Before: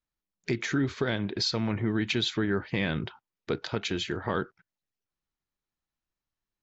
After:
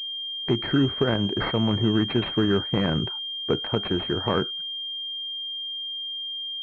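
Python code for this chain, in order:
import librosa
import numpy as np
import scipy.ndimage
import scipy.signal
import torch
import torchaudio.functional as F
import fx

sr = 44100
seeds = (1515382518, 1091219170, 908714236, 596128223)

y = fx.pwm(x, sr, carrier_hz=3200.0)
y = F.gain(torch.from_numpy(y), 6.0).numpy()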